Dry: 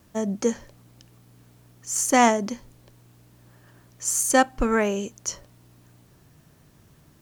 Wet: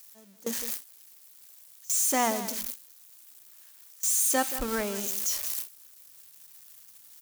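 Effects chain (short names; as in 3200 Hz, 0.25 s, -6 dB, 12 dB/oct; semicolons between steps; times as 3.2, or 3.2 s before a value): switching spikes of -13.5 dBFS; notches 60/120/180/240/300 Hz; echo 0.178 s -13 dB; gate with hold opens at -11 dBFS; gain -9 dB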